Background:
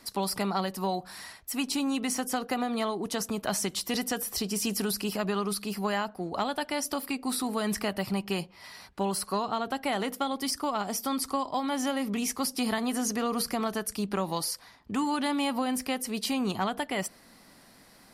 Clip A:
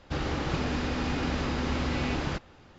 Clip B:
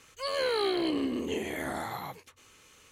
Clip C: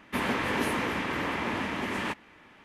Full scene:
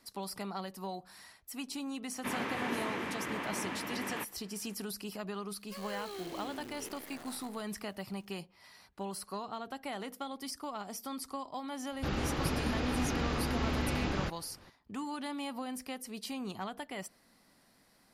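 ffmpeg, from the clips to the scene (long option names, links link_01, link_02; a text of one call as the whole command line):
ffmpeg -i bed.wav -i cue0.wav -i cue1.wav -i cue2.wav -filter_complex "[0:a]volume=-10.5dB[link_01];[3:a]highpass=100[link_02];[2:a]acrusher=bits=6:dc=4:mix=0:aa=0.000001[link_03];[link_02]atrim=end=2.64,asetpts=PTS-STARTPTS,volume=-7.5dB,afade=type=in:duration=0.004:curve=hsin,afade=type=out:start_time=2.636:duration=0.004:curve=hsin,adelay=2110[link_04];[link_03]atrim=end=2.91,asetpts=PTS-STARTPTS,volume=-15.5dB,afade=type=in:duration=0.004:curve=hsin,afade=type=out:start_time=2.906:duration=0.004:curve=hsin,adelay=5500[link_05];[1:a]atrim=end=2.78,asetpts=PTS-STARTPTS,volume=-3.5dB,afade=type=in:duration=0.004:curve=hsin,afade=type=out:start_time=2.776:duration=0.004:curve=hsin,adelay=11920[link_06];[link_01][link_04][link_05][link_06]amix=inputs=4:normalize=0" out.wav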